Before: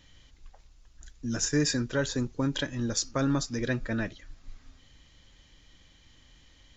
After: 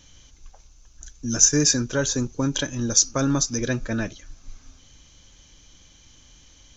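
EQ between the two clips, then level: bell 6100 Hz +14.5 dB 0.26 oct; notch 1900 Hz, Q 7.8; +4.5 dB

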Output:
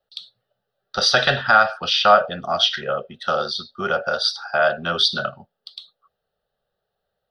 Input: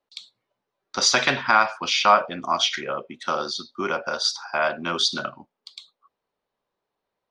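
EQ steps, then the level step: low shelf 340 Hz +6 dB; fixed phaser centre 1500 Hz, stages 8; +5.0 dB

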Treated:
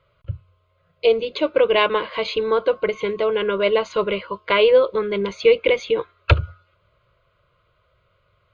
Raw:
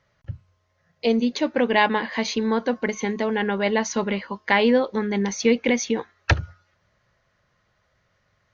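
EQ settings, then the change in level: high shelf 6000 Hz -9.5 dB; fixed phaser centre 1200 Hz, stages 8; +7.0 dB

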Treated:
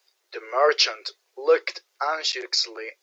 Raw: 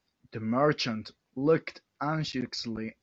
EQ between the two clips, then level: steep high-pass 360 Hz 96 dB/oct; high shelf 3100 Hz +10.5 dB; +6.0 dB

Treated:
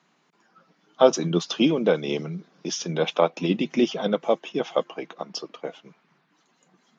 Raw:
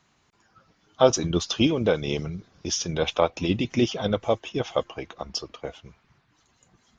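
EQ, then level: elliptic high-pass 160 Hz, stop band 40 dB; high shelf 6300 Hz -10 dB; +2.0 dB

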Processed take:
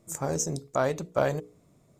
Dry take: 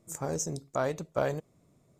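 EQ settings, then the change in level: notches 60/120/180/240/300/360/420/480 Hz; +4.0 dB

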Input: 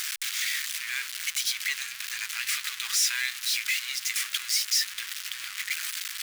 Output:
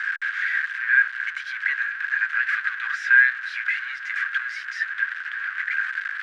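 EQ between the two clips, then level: synth low-pass 1600 Hz, resonance Q 14; 0.0 dB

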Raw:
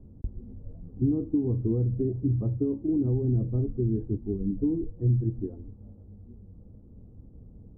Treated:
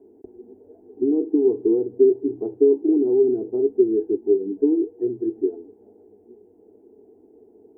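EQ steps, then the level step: resonant high-pass 420 Hz, resonance Q 4.9; fixed phaser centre 800 Hz, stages 8; +6.5 dB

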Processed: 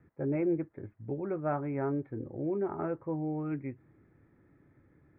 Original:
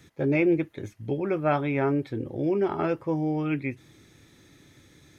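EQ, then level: LPF 1800 Hz 24 dB/oct; air absorption 350 m; -6.5 dB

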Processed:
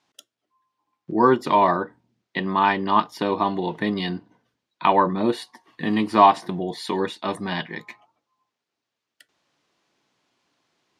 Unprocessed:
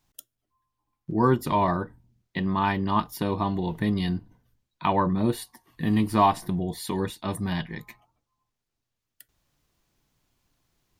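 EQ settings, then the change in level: BPF 290–5100 Hz; +6.5 dB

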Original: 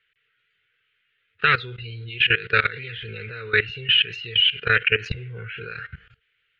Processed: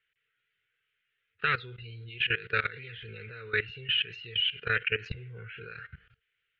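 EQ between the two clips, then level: air absorption 84 m; -8.5 dB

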